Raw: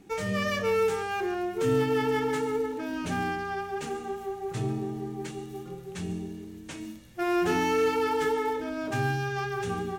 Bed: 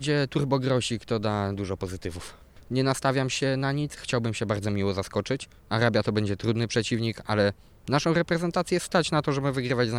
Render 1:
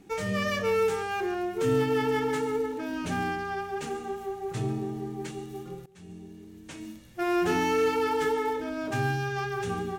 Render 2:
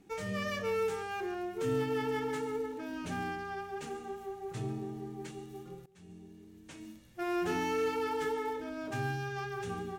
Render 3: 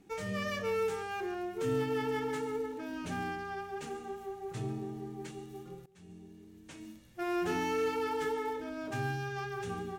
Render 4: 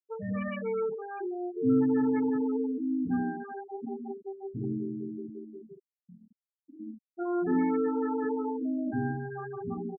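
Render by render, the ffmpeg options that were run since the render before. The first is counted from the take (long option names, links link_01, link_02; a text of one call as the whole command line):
ffmpeg -i in.wav -filter_complex "[0:a]asplit=2[link_01][link_02];[link_01]atrim=end=5.86,asetpts=PTS-STARTPTS,afade=type=out:start_time=5.856:duration=0.004:curve=hsin:silence=0.0841395[link_03];[link_02]atrim=start=5.86,asetpts=PTS-STARTPTS,afade=type=in:duration=1.21:silence=0.0841395[link_04];[link_03][link_04]concat=n=2:v=0:a=1" out.wav
ffmpeg -i in.wav -af "volume=-7dB" out.wav
ffmpeg -i in.wav -af anull out.wav
ffmpeg -i in.wav -af "equalizer=frequency=250:width_type=o:width=0.53:gain=15,afftfilt=real='re*gte(hypot(re,im),0.0562)':imag='im*gte(hypot(re,im),0.0562)':win_size=1024:overlap=0.75" out.wav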